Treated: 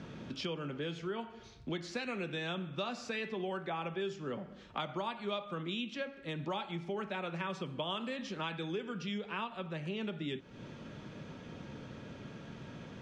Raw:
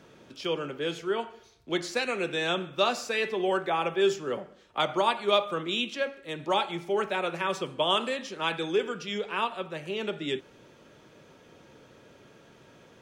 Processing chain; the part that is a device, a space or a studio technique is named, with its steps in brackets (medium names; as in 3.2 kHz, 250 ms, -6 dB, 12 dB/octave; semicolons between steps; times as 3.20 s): jukebox (low-pass 5.3 kHz 12 dB/octave; resonant low shelf 290 Hz +6.5 dB, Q 1.5; compression 4:1, threshold -42 dBFS, peak gain reduction 19 dB); trim +4 dB